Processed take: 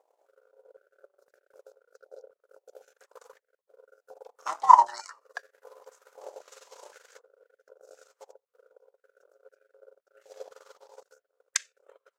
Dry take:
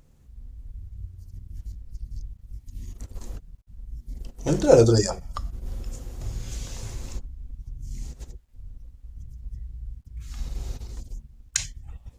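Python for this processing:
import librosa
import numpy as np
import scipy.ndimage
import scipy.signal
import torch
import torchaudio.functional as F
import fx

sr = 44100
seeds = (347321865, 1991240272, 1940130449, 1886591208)

y = x * np.sin(2.0 * np.pi * 480.0 * np.arange(len(x)) / sr)
y = fx.transient(y, sr, attack_db=9, sustain_db=-9)
y = fx.filter_held_highpass(y, sr, hz=3.9, low_hz=830.0, high_hz=1700.0)
y = y * 10.0 ** (-10.5 / 20.0)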